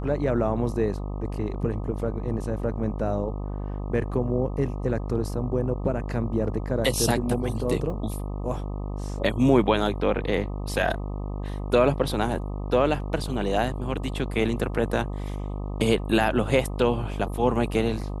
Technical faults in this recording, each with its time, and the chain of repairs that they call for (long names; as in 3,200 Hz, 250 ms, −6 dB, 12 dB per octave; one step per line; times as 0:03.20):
mains buzz 50 Hz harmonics 25 −31 dBFS
0:07.90: drop-out 2.3 ms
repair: hum removal 50 Hz, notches 25
repair the gap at 0:07.90, 2.3 ms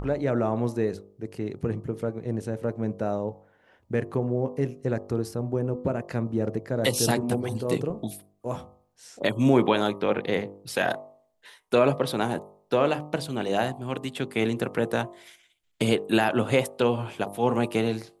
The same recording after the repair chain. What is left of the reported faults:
none of them is left